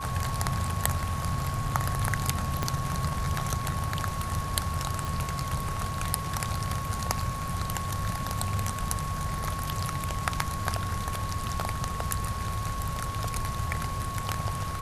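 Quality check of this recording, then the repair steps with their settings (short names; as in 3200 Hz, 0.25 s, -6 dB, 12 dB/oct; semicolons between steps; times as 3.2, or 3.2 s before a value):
tone 1100 Hz -35 dBFS
2.63 pop -13 dBFS
5.05 pop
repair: de-click; notch 1100 Hz, Q 30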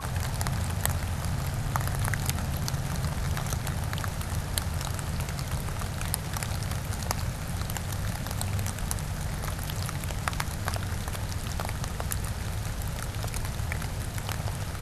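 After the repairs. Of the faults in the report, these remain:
2.63 pop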